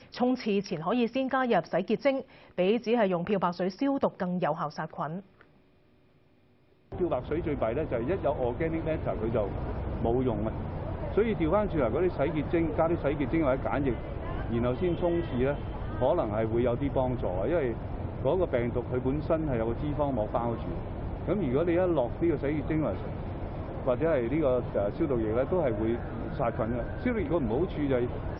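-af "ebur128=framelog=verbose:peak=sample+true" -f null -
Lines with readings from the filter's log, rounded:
Integrated loudness:
  I:         -29.4 LUFS
  Threshold: -39.7 LUFS
Loudness range:
  LRA:         4.0 LU
  Threshold: -49.8 LUFS
  LRA low:   -32.3 LUFS
  LRA high:  -28.3 LUFS
Sample peak:
  Peak:      -13.6 dBFS
True peak:
  Peak:      -13.6 dBFS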